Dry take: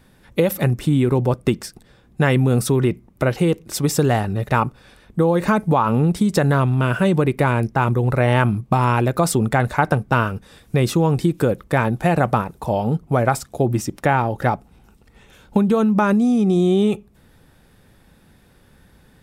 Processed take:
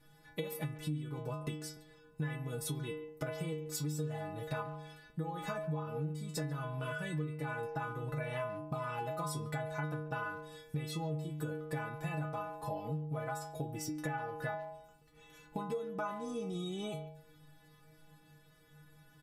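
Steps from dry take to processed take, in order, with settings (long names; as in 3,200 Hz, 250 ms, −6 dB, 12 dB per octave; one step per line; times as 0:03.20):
stiff-string resonator 150 Hz, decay 0.63 s, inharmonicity 0.008
downward compressor 6 to 1, threshold −42 dBFS, peak gain reduction 19.5 dB
far-end echo of a speakerphone 140 ms, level −16 dB
level +6 dB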